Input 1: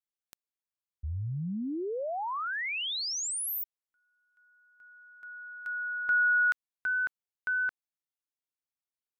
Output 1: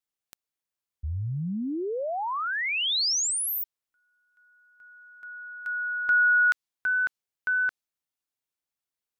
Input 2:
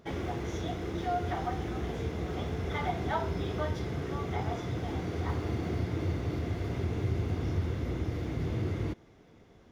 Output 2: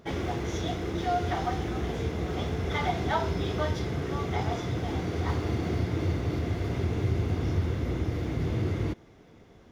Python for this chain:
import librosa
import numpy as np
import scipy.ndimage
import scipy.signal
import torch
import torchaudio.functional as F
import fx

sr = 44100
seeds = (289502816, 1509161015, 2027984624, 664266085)

y = fx.dynamic_eq(x, sr, hz=4800.0, q=0.75, threshold_db=-50.0, ratio=4.0, max_db=5)
y = y * librosa.db_to_amplitude(3.5)